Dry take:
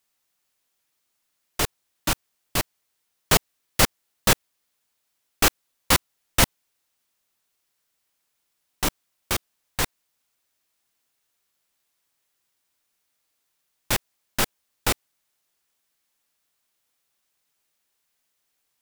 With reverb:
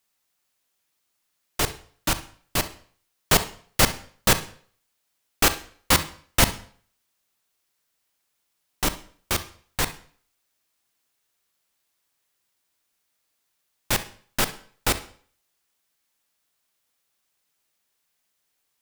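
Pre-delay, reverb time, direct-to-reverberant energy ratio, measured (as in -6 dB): 39 ms, 0.50 s, 11.5 dB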